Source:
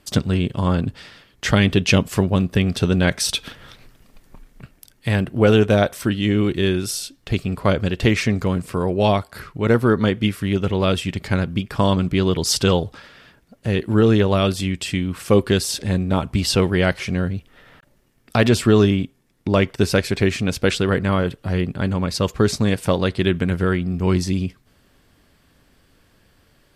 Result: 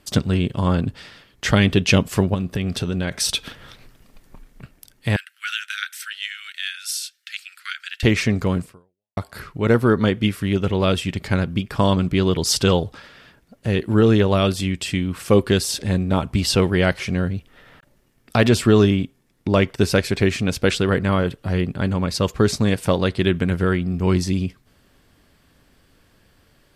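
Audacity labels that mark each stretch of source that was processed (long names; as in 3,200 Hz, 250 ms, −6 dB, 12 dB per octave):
2.340000	3.190000	downward compressor, threshold −19 dBFS
5.160000	8.030000	Butterworth high-pass 1,400 Hz 72 dB per octave
8.630000	9.170000	fade out exponential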